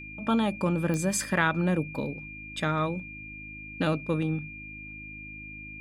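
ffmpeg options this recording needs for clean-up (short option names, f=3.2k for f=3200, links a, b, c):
-af "adeclick=t=4,bandreject=f=52.4:t=h:w=4,bandreject=f=104.8:t=h:w=4,bandreject=f=157.2:t=h:w=4,bandreject=f=209.6:t=h:w=4,bandreject=f=262:t=h:w=4,bandreject=f=314.4:t=h:w=4,bandreject=f=2.4k:w=30"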